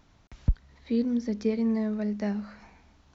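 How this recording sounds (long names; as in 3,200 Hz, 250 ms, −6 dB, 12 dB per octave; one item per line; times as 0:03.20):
background noise floor −61 dBFS
spectral slope −8.0 dB per octave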